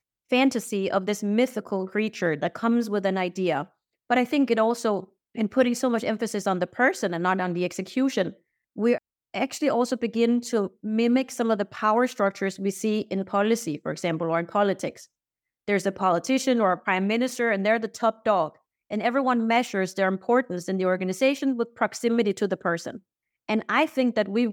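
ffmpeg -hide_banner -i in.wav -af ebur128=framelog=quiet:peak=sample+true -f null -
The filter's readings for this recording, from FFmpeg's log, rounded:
Integrated loudness:
  I:         -25.0 LUFS
  Threshold: -35.2 LUFS
Loudness range:
  LRA:         2.0 LU
  Threshold: -45.3 LUFS
  LRA low:   -26.4 LUFS
  LRA high:  -24.4 LUFS
Sample peak:
  Peak:       -8.6 dBFS
True peak:
  Peak:       -8.5 dBFS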